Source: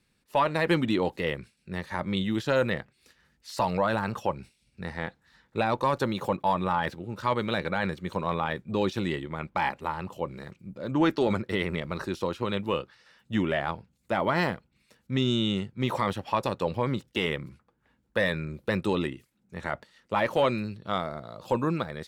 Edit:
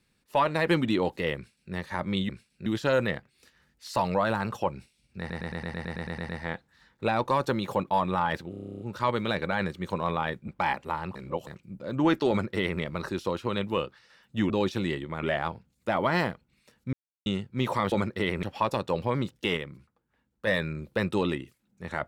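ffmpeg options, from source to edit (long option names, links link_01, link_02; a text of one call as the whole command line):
ffmpeg -i in.wav -filter_complex "[0:a]asplit=34[link_01][link_02][link_03][link_04][link_05][link_06][link_07][link_08][link_09][link_10][link_11][link_12][link_13][link_14][link_15][link_16][link_17][link_18][link_19][link_20][link_21][link_22][link_23][link_24][link_25][link_26][link_27][link_28][link_29][link_30][link_31][link_32][link_33][link_34];[link_01]atrim=end=2.292[link_35];[link_02]atrim=start=1.358:end=1.732[link_36];[link_03]atrim=start=2.288:end=4.932[link_37];[link_04]atrim=start=4.818:end=4.932[link_38];[link_05]atrim=start=4.818:end=4.932[link_39];[link_06]atrim=start=4.818:end=4.932[link_40];[link_07]atrim=start=4.818:end=4.932[link_41];[link_08]atrim=start=4.818:end=4.932[link_42];[link_09]atrim=start=4.818:end=4.932[link_43];[link_10]atrim=start=4.818:end=4.932[link_44];[link_11]atrim=start=4.818:end=4.932[link_45];[link_12]atrim=start=4.818:end=4.932[link_46];[link_13]atrim=start=4.818:end=7.062[link_47];[link_14]atrim=start=7.028:end=7.062[link_48];[link_15]atrim=start=7.028:end=7.062[link_49];[link_16]atrim=start=7.028:end=7.062[link_50];[link_17]atrim=start=7.028:end=7.062[link_51];[link_18]atrim=start=7.028:end=7.062[link_52];[link_19]atrim=start=7.028:end=7.062[link_53];[link_20]atrim=start=7.028:end=7.062[link_54];[link_21]atrim=start=7.028:end=7.062[link_55];[link_22]atrim=start=7.028:end=7.062[link_56];[link_23]atrim=start=7.028:end=8.712[link_57];[link_24]atrim=start=9.438:end=10.112[link_58];[link_25]atrim=start=10.108:end=10.432,asetpts=PTS-STARTPTS,areverse[link_59];[link_26]atrim=start=10.428:end=13.462[link_60];[link_27]atrim=start=8.708:end=9.442[link_61];[link_28]atrim=start=13.458:end=15.16,asetpts=PTS-STARTPTS,afade=type=out:start_time=1.698:duration=0.004:curve=hsin[link_62];[link_29]atrim=start=15.16:end=15.49,asetpts=PTS-STARTPTS,volume=0[link_63];[link_30]atrim=start=15.49:end=16.152,asetpts=PTS-STARTPTS,afade=type=in:duration=0.004:curve=hsin[link_64];[link_31]atrim=start=11.248:end=11.762[link_65];[link_32]atrim=start=16.148:end=17.292[link_66];[link_33]atrim=start=17.288:end=18.192,asetpts=PTS-STARTPTS,volume=-5.5dB[link_67];[link_34]atrim=start=18.188[link_68];[link_35][link_36]acrossfade=duration=0.004:curve1=hsin:curve2=hsin[link_69];[link_69][link_37]acrossfade=duration=0.004:curve1=hsin:curve2=hsin[link_70];[link_70][link_38]acrossfade=duration=0.004:curve1=hsin:curve2=hsin[link_71];[link_71][link_39]acrossfade=duration=0.004:curve1=hsin:curve2=hsin[link_72];[link_72][link_40]acrossfade=duration=0.004:curve1=hsin:curve2=hsin[link_73];[link_73][link_41]acrossfade=duration=0.004:curve1=hsin:curve2=hsin[link_74];[link_74][link_42]acrossfade=duration=0.004:curve1=hsin:curve2=hsin[link_75];[link_75][link_43]acrossfade=duration=0.004:curve1=hsin:curve2=hsin[link_76];[link_76][link_44]acrossfade=duration=0.004:curve1=hsin:curve2=hsin[link_77];[link_77][link_45]acrossfade=duration=0.004:curve1=hsin:curve2=hsin[link_78];[link_78][link_46]acrossfade=duration=0.004:curve1=hsin:curve2=hsin[link_79];[link_79][link_47]acrossfade=duration=0.004:curve1=hsin:curve2=hsin[link_80];[link_80][link_48]acrossfade=duration=0.004:curve1=hsin:curve2=hsin[link_81];[link_81][link_49]acrossfade=duration=0.004:curve1=hsin:curve2=hsin[link_82];[link_82][link_50]acrossfade=duration=0.004:curve1=hsin:curve2=hsin[link_83];[link_83][link_51]acrossfade=duration=0.004:curve1=hsin:curve2=hsin[link_84];[link_84][link_52]acrossfade=duration=0.004:curve1=hsin:curve2=hsin[link_85];[link_85][link_53]acrossfade=duration=0.004:curve1=hsin:curve2=hsin[link_86];[link_86][link_54]acrossfade=duration=0.004:curve1=hsin:curve2=hsin[link_87];[link_87][link_55]acrossfade=duration=0.004:curve1=hsin:curve2=hsin[link_88];[link_88][link_56]acrossfade=duration=0.004:curve1=hsin:curve2=hsin[link_89];[link_89][link_57]acrossfade=duration=0.004:curve1=hsin:curve2=hsin[link_90];[link_90][link_58]acrossfade=duration=0.004:curve1=hsin:curve2=hsin[link_91];[link_91][link_59]acrossfade=duration=0.004:curve1=hsin:curve2=hsin[link_92];[link_92][link_60]acrossfade=duration=0.004:curve1=hsin:curve2=hsin[link_93];[link_93][link_61]acrossfade=duration=0.004:curve1=hsin:curve2=hsin[link_94];[link_62][link_63][link_64]concat=n=3:v=0:a=1[link_95];[link_94][link_95]acrossfade=duration=0.004:curve1=hsin:curve2=hsin[link_96];[link_96][link_65]acrossfade=duration=0.004:curve1=hsin:curve2=hsin[link_97];[link_97][link_66]acrossfade=duration=0.004:curve1=hsin:curve2=hsin[link_98];[link_98][link_67]acrossfade=duration=0.004:curve1=hsin:curve2=hsin[link_99];[link_99][link_68]acrossfade=duration=0.004:curve1=hsin:curve2=hsin" out.wav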